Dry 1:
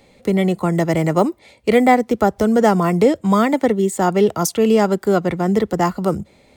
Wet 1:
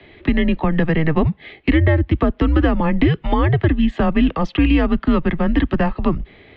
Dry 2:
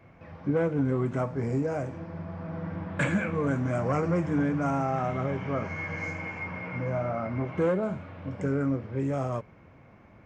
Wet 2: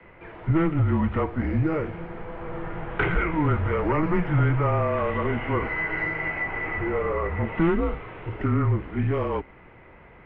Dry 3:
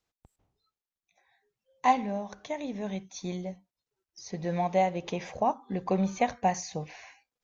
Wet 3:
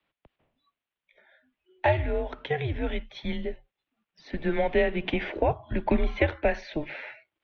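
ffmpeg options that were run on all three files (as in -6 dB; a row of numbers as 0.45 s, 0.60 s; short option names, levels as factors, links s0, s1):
-filter_complex "[0:a]highpass=f=190:t=q:w=0.5412,highpass=f=190:t=q:w=1.307,lowpass=f=3300:t=q:w=0.5176,lowpass=f=3300:t=q:w=0.7071,lowpass=f=3300:t=q:w=1.932,afreqshift=-160,acrossover=split=91|290|990[s0][s1][s2][s3];[s0]acompressor=threshold=0.0501:ratio=4[s4];[s1]acompressor=threshold=0.0708:ratio=4[s5];[s2]acompressor=threshold=0.0224:ratio=4[s6];[s3]acompressor=threshold=0.0158:ratio=4[s7];[s4][s5][s6][s7]amix=inputs=4:normalize=0,highshelf=f=2400:g=9.5,volume=2.11"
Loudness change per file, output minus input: -1.0 LU, +4.5 LU, +2.0 LU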